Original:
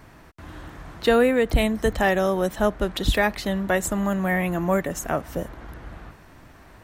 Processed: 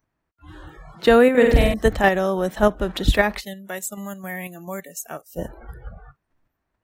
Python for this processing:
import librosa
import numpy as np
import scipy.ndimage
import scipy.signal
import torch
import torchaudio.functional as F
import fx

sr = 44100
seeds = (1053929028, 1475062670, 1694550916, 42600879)

p1 = fx.pre_emphasis(x, sr, coefficient=0.8, at=(3.39, 5.37), fade=0.02)
p2 = fx.noise_reduce_blind(p1, sr, reduce_db=29)
p3 = fx.high_shelf(p2, sr, hz=4100.0, db=-4.0)
p4 = fx.level_steps(p3, sr, step_db=19)
p5 = p3 + F.gain(torch.from_numpy(p4), 1.5).numpy()
p6 = fx.room_flutter(p5, sr, wall_m=8.2, rt60_s=0.85, at=(1.3, 1.74))
y = F.gain(torch.from_numpy(p6), -1.0).numpy()